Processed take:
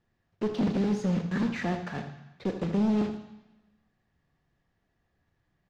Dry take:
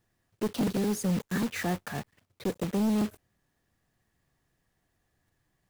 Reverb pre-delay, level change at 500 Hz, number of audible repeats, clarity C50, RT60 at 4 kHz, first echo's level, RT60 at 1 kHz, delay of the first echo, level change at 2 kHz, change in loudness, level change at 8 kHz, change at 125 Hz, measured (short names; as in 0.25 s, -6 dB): 3 ms, +1.0 dB, 1, 7.5 dB, 1.1 s, -11.0 dB, 1.1 s, 78 ms, -0.5 dB, +1.0 dB, under -10 dB, +2.0 dB